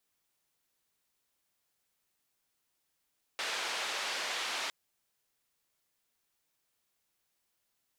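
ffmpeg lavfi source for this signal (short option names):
-f lavfi -i "anoisesrc=c=white:d=1.31:r=44100:seed=1,highpass=f=540,lowpass=f=4000,volume=-23.5dB"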